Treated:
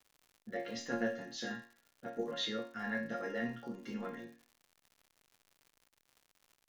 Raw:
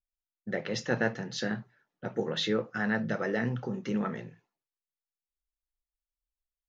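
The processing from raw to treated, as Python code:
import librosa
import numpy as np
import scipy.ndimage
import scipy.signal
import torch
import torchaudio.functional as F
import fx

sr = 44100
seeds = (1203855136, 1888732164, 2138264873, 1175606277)

y = fx.resonator_bank(x, sr, root=58, chord='minor', decay_s=0.39)
y = fx.dmg_crackle(y, sr, seeds[0], per_s=140.0, level_db=-63.0)
y = y * librosa.db_to_amplitude(12.0)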